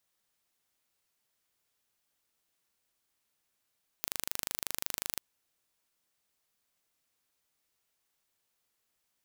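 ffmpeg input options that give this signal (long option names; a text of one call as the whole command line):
ffmpeg -f lavfi -i "aevalsrc='0.501*eq(mod(n,1729),0)':duration=1.14:sample_rate=44100" out.wav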